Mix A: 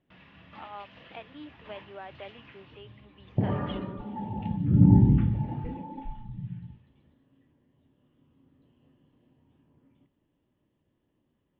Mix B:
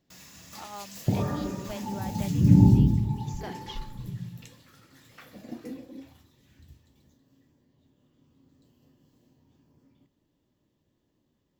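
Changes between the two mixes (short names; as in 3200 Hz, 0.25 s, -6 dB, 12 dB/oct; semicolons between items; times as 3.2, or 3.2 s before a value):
speech: remove HPF 380 Hz; second sound: entry -2.30 s; master: remove elliptic low-pass 3100 Hz, stop band 70 dB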